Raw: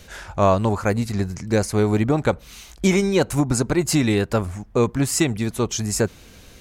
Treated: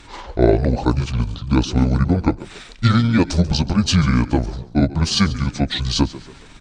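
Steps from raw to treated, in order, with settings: delay-line pitch shifter -9 st; on a send: frequency-shifting echo 0.138 s, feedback 40%, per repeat +53 Hz, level -18 dB; on the sum: gain +4 dB

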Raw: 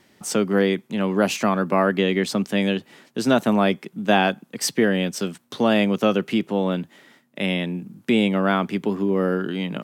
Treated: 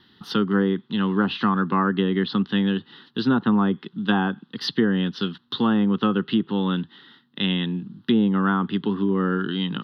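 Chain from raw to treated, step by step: resonant high shelf 5100 Hz -12 dB, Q 3; fixed phaser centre 2300 Hz, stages 6; treble ducked by the level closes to 1100 Hz, closed at -17 dBFS; gain +2.5 dB

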